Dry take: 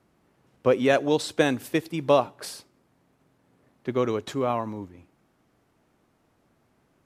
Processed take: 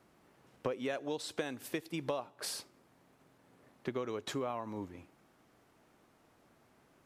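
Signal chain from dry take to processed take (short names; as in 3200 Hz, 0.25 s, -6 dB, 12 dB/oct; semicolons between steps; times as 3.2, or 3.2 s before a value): low shelf 270 Hz -6.5 dB; compressor 8:1, threshold -36 dBFS, peak gain reduction 20 dB; gain +2 dB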